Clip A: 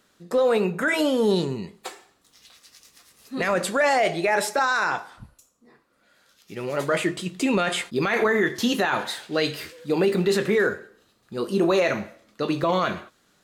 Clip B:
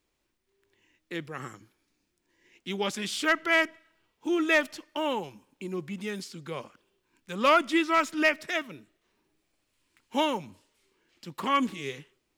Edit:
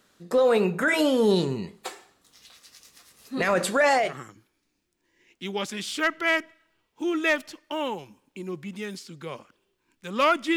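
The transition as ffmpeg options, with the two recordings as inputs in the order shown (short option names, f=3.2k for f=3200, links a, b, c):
-filter_complex "[0:a]apad=whole_dur=10.56,atrim=end=10.56,atrim=end=4.18,asetpts=PTS-STARTPTS[a];[1:a]atrim=start=1.19:end=7.81,asetpts=PTS-STARTPTS[b];[a][b]acrossfade=d=0.24:c1=tri:c2=tri"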